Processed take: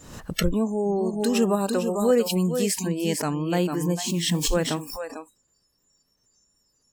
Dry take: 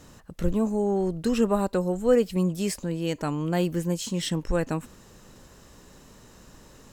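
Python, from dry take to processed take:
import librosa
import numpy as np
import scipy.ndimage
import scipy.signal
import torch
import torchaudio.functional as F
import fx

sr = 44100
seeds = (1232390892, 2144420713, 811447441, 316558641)

p1 = fx.dmg_noise_colour(x, sr, seeds[0], colour='white', level_db=-51.0, at=(4.05, 4.53), fade=0.02)
p2 = fx.rider(p1, sr, range_db=10, speed_s=0.5)
p3 = p1 + (p2 * 10.0 ** (-1.0 / 20.0))
p4 = fx.high_shelf(p3, sr, hz=5500.0, db=6.5, at=(1.05, 2.87))
p5 = p4 + 10.0 ** (-7.5 / 20.0) * np.pad(p4, (int(448 * sr / 1000.0), 0))[:len(p4)]
p6 = fx.noise_reduce_blind(p5, sr, reduce_db=29)
p7 = fx.pre_swell(p6, sr, db_per_s=67.0)
y = p7 * 10.0 ** (-4.5 / 20.0)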